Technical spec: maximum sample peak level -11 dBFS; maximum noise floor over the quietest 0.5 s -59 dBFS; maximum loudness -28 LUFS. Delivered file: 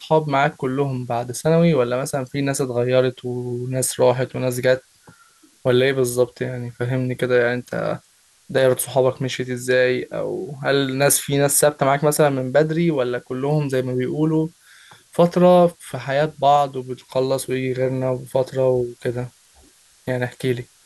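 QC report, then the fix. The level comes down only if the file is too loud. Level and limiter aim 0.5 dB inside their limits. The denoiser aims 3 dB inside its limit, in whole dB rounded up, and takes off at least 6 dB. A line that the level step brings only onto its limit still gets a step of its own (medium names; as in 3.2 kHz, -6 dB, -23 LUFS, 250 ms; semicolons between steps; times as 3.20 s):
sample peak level -5.0 dBFS: fail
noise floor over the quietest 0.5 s -56 dBFS: fail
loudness -20.0 LUFS: fail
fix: trim -8.5 dB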